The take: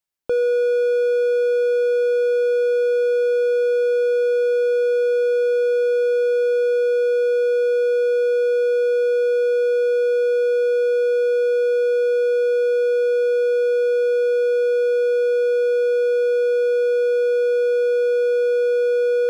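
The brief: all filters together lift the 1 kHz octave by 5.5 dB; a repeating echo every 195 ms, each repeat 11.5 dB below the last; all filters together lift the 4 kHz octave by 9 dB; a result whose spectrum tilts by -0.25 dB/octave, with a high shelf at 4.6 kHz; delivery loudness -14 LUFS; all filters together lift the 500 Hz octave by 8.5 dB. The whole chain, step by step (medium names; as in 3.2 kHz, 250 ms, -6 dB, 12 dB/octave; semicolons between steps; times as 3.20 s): peaking EQ 500 Hz +7 dB; peaking EQ 1 kHz +8 dB; peaking EQ 4 kHz +7 dB; treble shelf 4.6 kHz +7 dB; feedback delay 195 ms, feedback 27%, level -11.5 dB; trim -2 dB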